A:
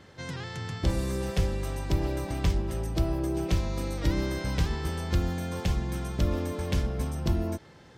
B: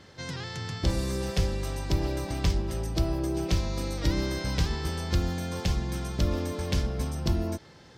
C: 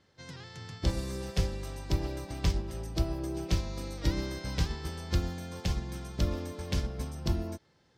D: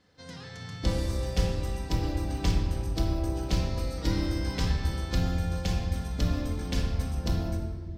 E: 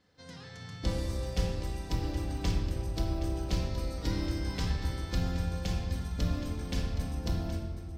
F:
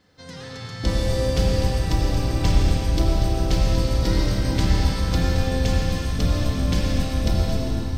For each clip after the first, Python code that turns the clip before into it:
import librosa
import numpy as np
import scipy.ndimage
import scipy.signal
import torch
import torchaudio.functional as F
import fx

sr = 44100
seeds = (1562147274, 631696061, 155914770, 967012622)

y1 = fx.peak_eq(x, sr, hz=4900.0, db=6.0, octaves=0.93)
y2 = fx.upward_expand(y1, sr, threshold_db=-47.0, expansion=1.5)
y2 = y2 * 10.0 ** (-1.5 / 20.0)
y3 = fx.room_shoebox(y2, sr, seeds[0], volume_m3=1700.0, walls='mixed', distance_m=1.9)
y4 = y3 + 10.0 ** (-11.5 / 20.0) * np.pad(y3, (int(770 * sr / 1000.0), 0))[:len(y3)]
y4 = y4 * 10.0 ** (-4.0 / 20.0)
y5 = fx.rev_freeverb(y4, sr, rt60_s=3.0, hf_ratio=0.95, predelay_ms=60, drr_db=-1.0)
y5 = y5 * 10.0 ** (8.5 / 20.0)